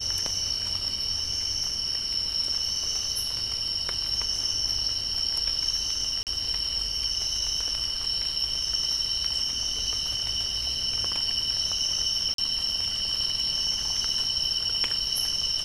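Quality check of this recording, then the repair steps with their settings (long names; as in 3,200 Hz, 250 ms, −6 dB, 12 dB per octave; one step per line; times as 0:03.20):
0:06.23–0:06.27: drop-out 38 ms
0:12.34–0:12.38: drop-out 43 ms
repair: repair the gap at 0:06.23, 38 ms
repair the gap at 0:12.34, 43 ms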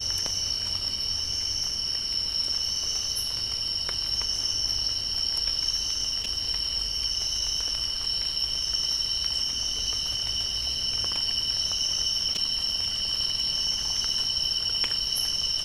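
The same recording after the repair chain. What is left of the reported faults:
none of them is left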